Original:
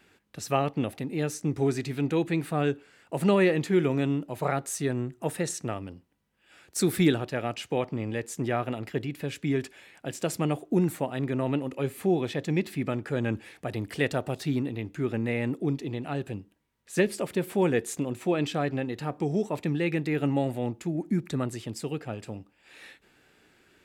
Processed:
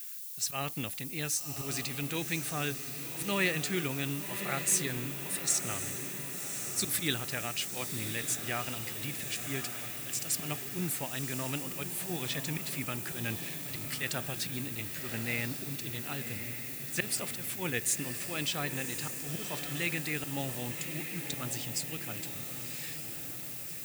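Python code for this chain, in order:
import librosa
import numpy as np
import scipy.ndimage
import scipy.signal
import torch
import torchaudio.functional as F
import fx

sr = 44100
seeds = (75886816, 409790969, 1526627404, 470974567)

y = fx.high_shelf(x, sr, hz=2800.0, db=5.5)
y = fx.auto_swell(y, sr, attack_ms=104.0)
y = fx.dmg_noise_colour(y, sr, seeds[0], colour='violet', level_db=-45.0)
y = fx.tone_stack(y, sr, knobs='5-5-5')
y = fx.echo_diffused(y, sr, ms=1111, feedback_pct=60, wet_db=-8)
y = y * librosa.db_to_amplitude(8.0)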